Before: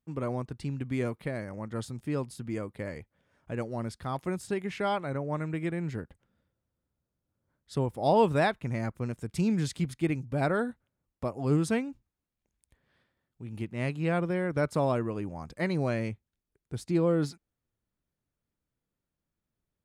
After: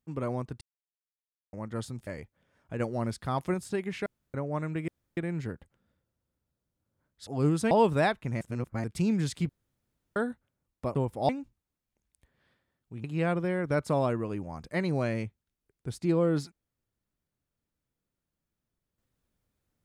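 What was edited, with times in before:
0.61–1.53 s: mute
2.07–2.85 s: delete
3.58–4.32 s: gain +3 dB
4.84–5.12 s: room tone
5.66 s: insert room tone 0.29 s
7.76–8.10 s: swap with 11.34–11.78 s
8.80–9.23 s: reverse
9.88–10.55 s: room tone
13.53–13.90 s: delete

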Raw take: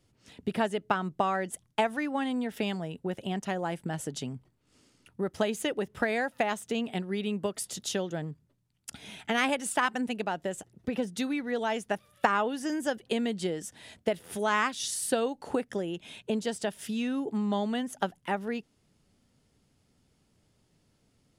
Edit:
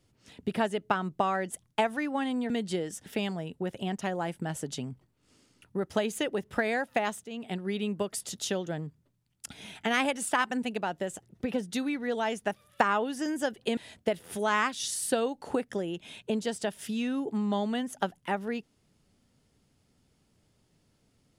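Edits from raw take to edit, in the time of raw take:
6.68–7.06 s: fade in, from -15.5 dB
13.21–13.77 s: move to 2.50 s

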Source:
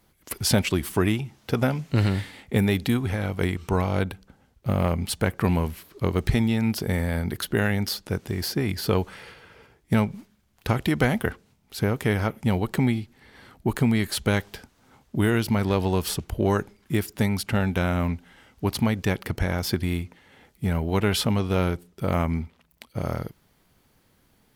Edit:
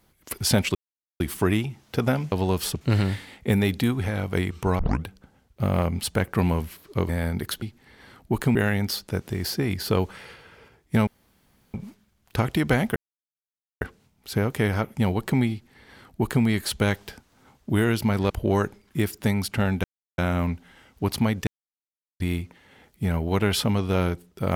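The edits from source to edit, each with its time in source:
0.75 s: insert silence 0.45 s
3.85 s: tape start 0.25 s
6.15–7.00 s: delete
10.05 s: insert room tone 0.67 s
11.27 s: insert silence 0.85 s
12.97–13.90 s: copy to 7.53 s
15.76–16.25 s: move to 1.87 s
17.79 s: insert silence 0.34 s
19.08–19.81 s: mute

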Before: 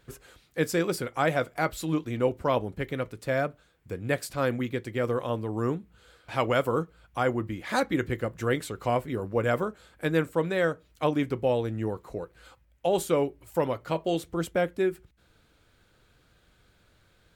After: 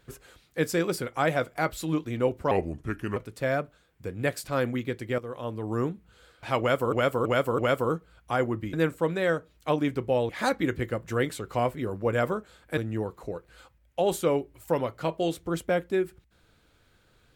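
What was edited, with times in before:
2.51–3.02 s: speed 78%
5.04–5.57 s: fade in, from -14 dB
6.45–6.78 s: loop, 4 plays
10.08–11.64 s: move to 7.60 s

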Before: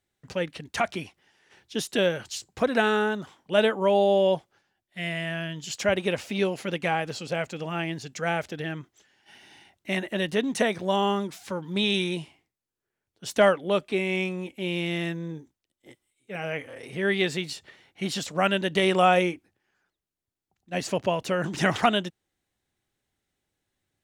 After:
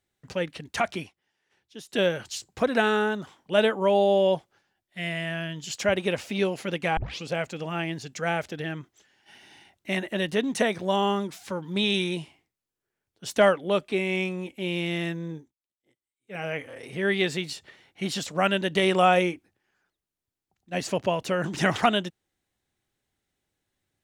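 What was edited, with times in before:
1.01–2.00 s: dip -13 dB, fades 0.13 s
6.97 s: tape start 0.26 s
15.35–16.39 s: dip -19.5 dB, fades 0.19 s

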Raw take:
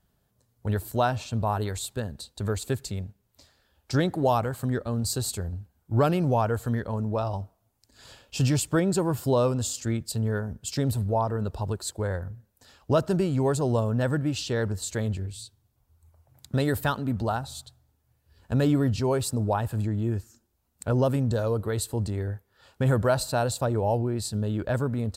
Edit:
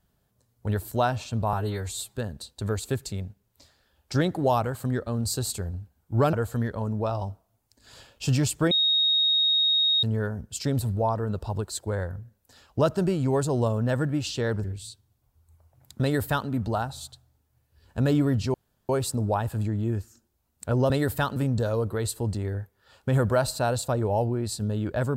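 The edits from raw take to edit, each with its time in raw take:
1.53–1.95 s: stretch 1.5×
6.12–6.45 s: delete
8.83–10.15 s: bleep 3.75 kHz -19 dBFS
14.76–15.18 s: delete
16.56–17.02 s: copy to 21.09 s
19.08 s: insert room tone 0.35 s

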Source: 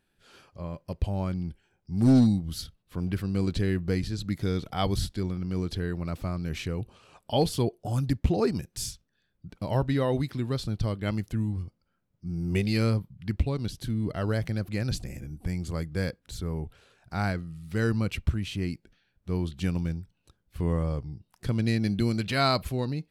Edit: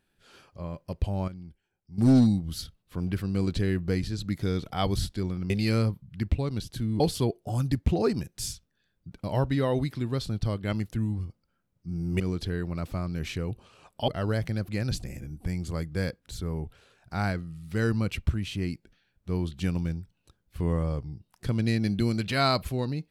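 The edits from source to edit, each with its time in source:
1.28–1.98 s: gain -11 dB
5.50–7.38 s: swap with 12.58–14.08 s

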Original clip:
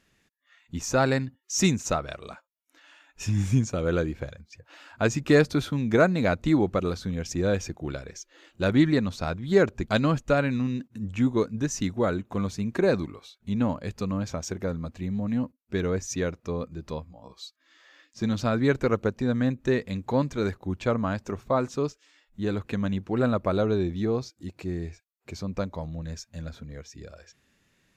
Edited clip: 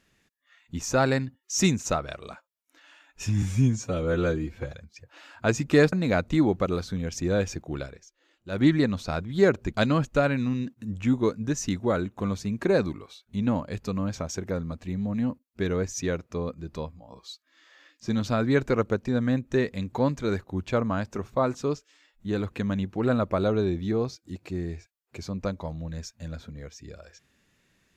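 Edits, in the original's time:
3.42–4.29 s: stretch 1.5×
5.49–6.06 s: delete
7.99–8.78 s: dip -12 dB, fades 0.15 s

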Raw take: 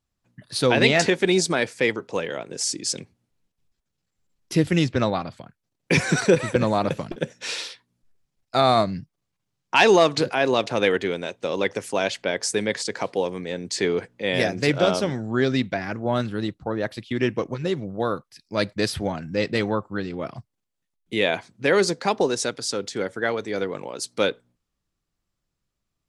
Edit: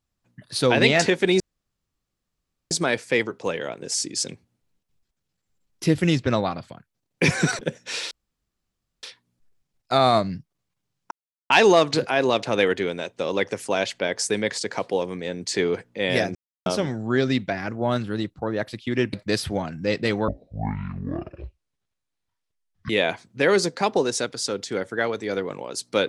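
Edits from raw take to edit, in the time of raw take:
1.40 s: insert room tone 1.31 s
6.28–7.14 s: delete
7.66 s: insert room tone 0.92 s
9.74 s: insert silence 0.39 s
14.59–14.90 s: mute
17.37–18.63 s: delete
19.78–21.14 s: speed 52%

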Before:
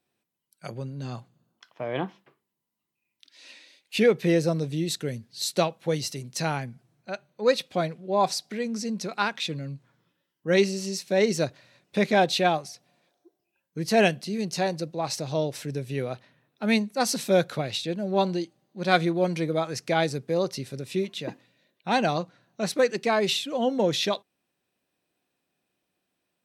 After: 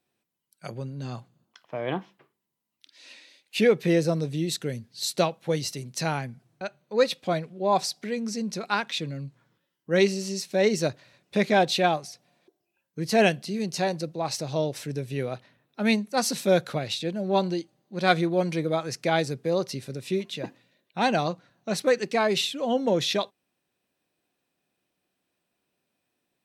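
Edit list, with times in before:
shrink pauses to 80%

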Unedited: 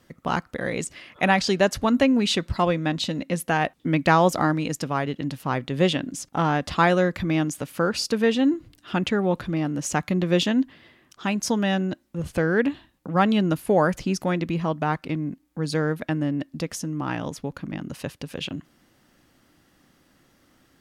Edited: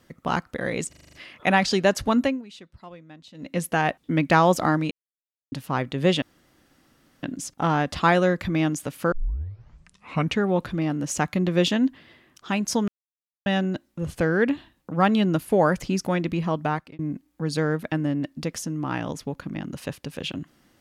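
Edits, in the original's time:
0.89 s: stutter 0.04 s, 7 plays
1.93–3.35 s: dip -21.5 dB, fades 0.25 s
4.67–5.28 s: mute
5.98 s: insert room tone 1.01 s
7.87 s: tape start 1.30 s
11.63 s: insert silence 0.58 s
14.84–15.16 s: fade out

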